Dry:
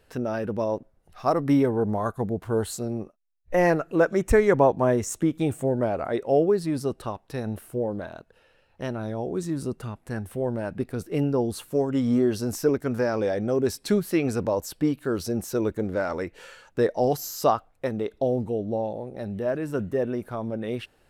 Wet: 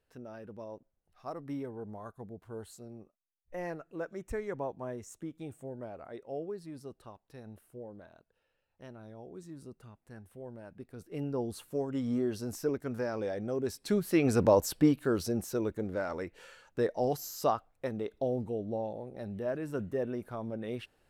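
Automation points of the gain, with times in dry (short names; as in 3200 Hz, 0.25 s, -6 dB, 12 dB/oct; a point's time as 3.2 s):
10.83 s -18 dB
11.38 s -9.5 dB
13.75 s -9.5 dB
14.51 s +2.5 dB
15.68 s -7.5 dB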